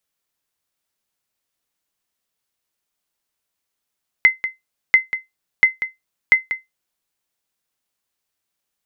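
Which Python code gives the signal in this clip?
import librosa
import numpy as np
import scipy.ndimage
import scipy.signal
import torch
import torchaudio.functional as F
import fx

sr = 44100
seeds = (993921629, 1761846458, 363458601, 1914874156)

y = fx.sonar_ping(sr, hz=2060.0, decay_s=0.17, every_s=0.69, pings=4, echo_s=0.19, echo_db=-11.5, level_db=-2.5)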